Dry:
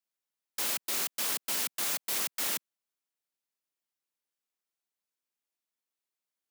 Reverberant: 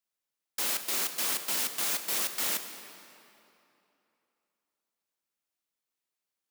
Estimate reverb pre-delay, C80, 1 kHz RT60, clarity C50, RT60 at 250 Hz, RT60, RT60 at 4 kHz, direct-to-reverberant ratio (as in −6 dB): 13 ms, 9.0 dB, 2.9 s, 8.0 dB, 3.0 s, 2.9 s, 2.1 s, 7.0 dB